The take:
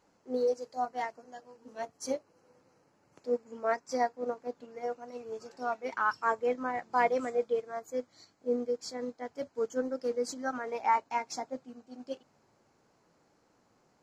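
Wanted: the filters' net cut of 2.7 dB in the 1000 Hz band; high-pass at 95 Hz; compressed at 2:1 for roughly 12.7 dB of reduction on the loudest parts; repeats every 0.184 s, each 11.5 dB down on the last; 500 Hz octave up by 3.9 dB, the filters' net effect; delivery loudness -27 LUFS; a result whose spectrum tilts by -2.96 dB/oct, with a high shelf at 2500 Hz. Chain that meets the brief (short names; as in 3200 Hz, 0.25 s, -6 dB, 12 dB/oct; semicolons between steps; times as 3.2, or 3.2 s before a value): HPF 95 Hz; bell 500 Hz +5.5 dB; bell 1000 Hz -5 dB; high shelf 2500 Hz -7.5 dB; compressor 2:1, threshold -45 dBFS; feedback echo 0.184 s, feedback 27%, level -11.5 dB; gain +15.5 dB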